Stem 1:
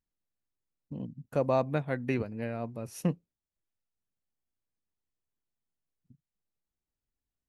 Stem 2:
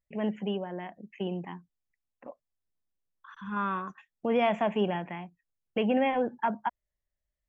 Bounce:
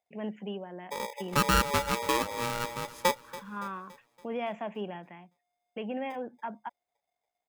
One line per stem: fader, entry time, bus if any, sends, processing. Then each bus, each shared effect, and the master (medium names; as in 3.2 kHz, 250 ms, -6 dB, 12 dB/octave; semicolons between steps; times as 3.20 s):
+2.5 dB, 0.00 s, no send, echo send -17 dB, treble shelf 4.4 kHz -12 dB; polarity switched at an audio rate 710 Hz
-8.5 dB, 0.00 s, no send, no echo send, high-pass 140 Hz; gain riding within 4 dB 2 s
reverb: none
echo: feedback delay 283 ms, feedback 52%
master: none